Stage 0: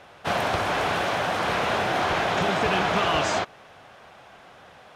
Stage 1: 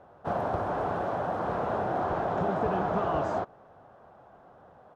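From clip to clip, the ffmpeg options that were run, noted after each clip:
ffmpeg -i in.wav -af "firequalizer=gain_entry='entry(690,0);entry(1400,-7);entry(2200,-21)':delay=0.05:min_phase=1,volume=-3dB" out.wav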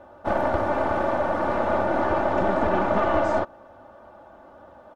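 ffmpeg -i in.wav -af "aeval=exprs='(tanh(11.2*val(0)+0.6)-tanh(0.6))/11.2':channel_layout=same,aecho=1:1:3.4:0.76,volume=8dB" out.wav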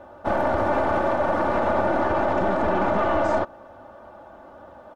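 ffmpeg -i in.wav -af "alimiter=limit=-15.5dB:level=0:latency=1:release=27,volume=3dB" out.wav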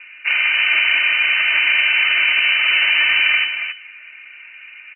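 ffmpeg -i in.wav -af "aecho=1:1:277:0.398,lowpass=frequency=2600:width_type=q:width=0.5098,lowpass=frequency=2600:width_type=q:width=0.6013,lowpass=frequency=2600:width_type=q:width=0.9,lowpass=frequency=2600:width_type=q:width=2.563,afreqshift=-3000,volume=5dB" out.wav

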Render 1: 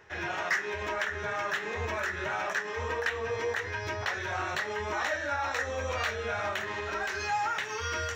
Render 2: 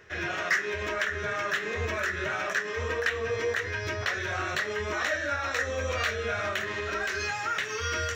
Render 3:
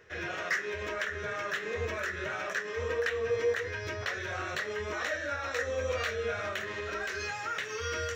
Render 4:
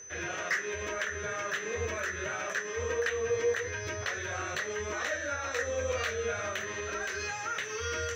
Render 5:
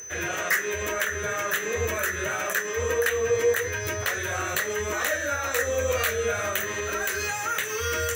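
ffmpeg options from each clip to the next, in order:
ffmpeg -i in.wav -af "equalizer=frequency=870:width_type=o:width=0.37:gain=-13,volume=3.5dB" out.wav
ffmpeg -i in.wav -af "equalizer=frequency=490:width=5.5:gain=7.5,volume=-5dB" out.wav
ffmpeg -i in.wav -af "aeval=exprs='val(0)+0.00562*sin(2*PI*6100*n/s)':channel_layout=same" out.wav
ffmpeg -i in.wav -af "aexciter=amount=5.7:drive=9.1:freq=8000,volume=6.5dB" out.wav

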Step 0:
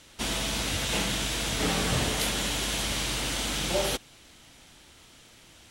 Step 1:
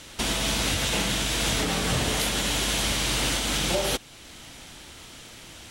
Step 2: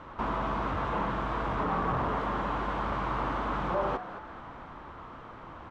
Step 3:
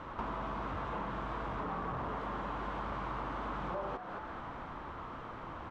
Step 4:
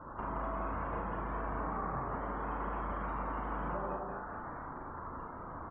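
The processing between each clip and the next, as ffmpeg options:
ffmpeg -i in.wav -af "alimiter=limit=-24dB:level=0:latency=1:release=435,volume=9dB" out.wav
ffmpeg -i in.wav -filter_complex "[0:a]asoftclip=type=hard:threshold=-28.5dB,lowpass=frequency=1100:width_type=q:width=4.1,asplit=6[link_01][link_02][link_03][link_04][link_05][link_06];[link_02]adelay=219,afreqshift=140,volume=-13dB[link_07];[link_03]adelay=438,afreqshift=280,volume=-19.4dB[link_08];[link_04]adelay=657,afreqshift=420,volume=-25.8dB[link_09];[link_05]adelay=876,afreqshift=560,volume=-32.1dB[link_10];[link_06]adelay=1095,afreqshift=700,volume=-38.5dB[link_11];[link_01][link_07][link_08][link_09][link_10][link_11]amix=inputs=6:normalize=0" out.wav
ffmpeg -i in.wav -af "acompressor=threshold=-38dB:ratio=4,volume=1dB" out.wav
ffmpeg -i in.wav -filter_complex "[0:a]asplit=2[link_01][link_02];[link_02]aecho=0:1:174:0.631[link_03];[link_01][link_03]amix=inputs=2:normalize=0,afftdn=noise_reduction=31:noise_floor=-48,asplit=2[link_04][link_05];[link_05]aecho=0:1:38|74:0.631|0.355[link_06];[link_04][link_06]amix=inputs=2:normalize=0,volume=-2.5dB" out.wav

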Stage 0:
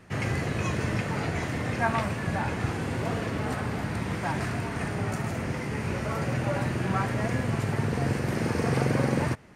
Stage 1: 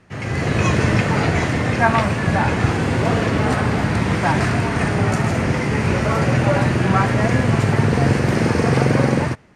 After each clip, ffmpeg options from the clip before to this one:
ffmpeg -i in.wav -af "lowpass=8500,dynaudnorm=framelen=110:gausssize=7:maxgain=12dB" out.wav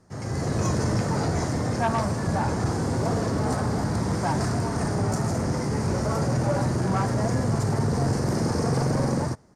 ffmpeg -i in.wav -af "firequalizer=gain_entry='entry(920,0);entry(2600,-16);entry(5000,5)':delay=0.05:min_phase=1,asoftclip=type=tanh:threshold=-11.5dB,volume=-5dB" out.wav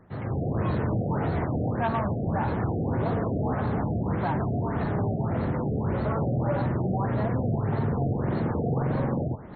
ffmpeg -i in.wav -af "areverse,acompressor=mode=upward:threshold=-29dB:ratio=2.5,areverse,alimiter=limit=-19.5dB:level=0:latency=1:release=128,afftfilt=real='re*lt(b*sr/1024,740*pow(4400/740,0.5+0.5*sin(2*PI*1.7*pts/sr)))':imag='im*lt(b*sr/1024,740*pow(4400/740,0.5+0.5*sin(2*PI*1.7*pts/sr)))':win_size=1024:overlap=0.75" out.wav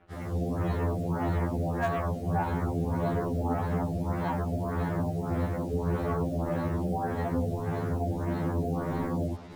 ffmpeg -i in.wav -filter_complex "[0:a]acrossover=split=210|1800[link_01][link_02][link_03];[link_03]aeval=exprs='(mod(44.7*val(0)+1,2)-1)/44.7':channel_layout=same[link_04];[link_01][link_02][link_04]amix=inputs=3:normalize=0,acrusher=bits=7:mix=0:aa=0.5,afftfilt=real='re*2*eq(mod(b,4),0)':imag='im*2*eq(mod(b,4),0)':win_size=2048:overlap=0.75" out.wav

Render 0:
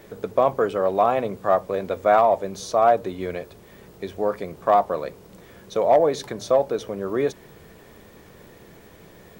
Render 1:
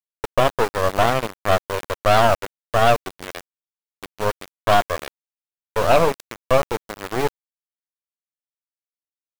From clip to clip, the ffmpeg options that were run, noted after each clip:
ffmpeg -i in.wav -af "aeval=exprs='val(0)*gte(abs(val(0)),0.0708)':channel_layout=same,aeval=exprs='0.398*(cos(1*acos(clip(val(0)/0.398,-1,1)))-cos(1*PI/2))+0.126*(cos(4*acos(clip(val(0)/0.398,-1,1)))-cos(4*PI/2))':channel_layout=same" out.wav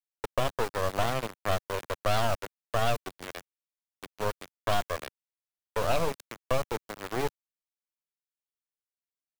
ffmpeg -i in.wav -filter_complex "[0:a]acrossover=split=160|3000[link_01][link_02][link_03];[link_02]acompressor=threshold=-18dB:ratio=6[link_04];[link_01][link_04][link_03]amix=inputs=3:normalize=0,volume=-7dB" out.wav

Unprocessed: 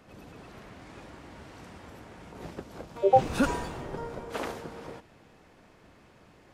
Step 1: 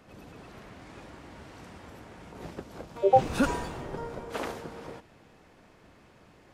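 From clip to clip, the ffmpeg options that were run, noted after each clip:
ffmpeg -i in.wav -af anull out.wav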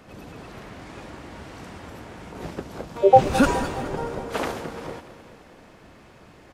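ffmpeg -i in.wav -af "aecho=1:1:211|422|633|844|1055|1266:0.188|0.113|0.0678|0.0407|0.0244|0.0146,volume=7dB" out.wav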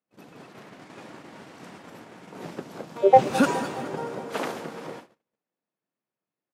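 ffmpeg -i in.wav -af "highpass=frequency=140:width=0.5412,highpass=frequency=140:width=1.3066,agate=range=-39dB:threshold=-41dB:ratio=16:detection=peak,aeval=exprs='0.891*(cos(1*acos(clip(val(0)/0.891,-1,1)))-cos(1*PI/2))+0.0501*(cos(3*acos(clip(val(0)/0.891,-1,1)))-cos(3*PI/2))':channel_layout=same,volume=-1dB" out.wav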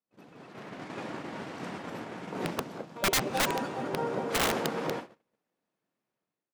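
ffmpeg -i in.wav -af "highshelf=frequency=6700:gain=-9.5,dynaudnorm=framelen=410:gausssize=3:maxgain=12dB,aeval=exprs='(mod(5.01*val(0)+1,2)-1)/5.01':channel_layout=same,volume=-6dB" out.wav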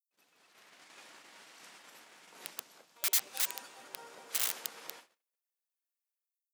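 ffmpeg -i in.wav -af "aderivative" out.wav

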